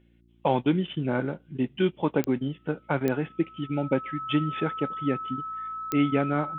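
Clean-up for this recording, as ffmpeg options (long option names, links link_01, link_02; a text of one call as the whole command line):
ffmpeg -i in.wav -af "adeclick=threshold=4,bandreject=frequency=57.8:width_type=h:width=4,bandreject=frequency=115.6:width_type=h:width=4,bandreject=frequency=173.4:width_type=h:width=4,bandreject=frequency=231.2:width_type=h:width=4,bandreject=frequency=289:width_type=h:width=4,bandreject=frequency=346.8:width_type=h:width=4,bandreject=frequency=1300:width=30" out.wav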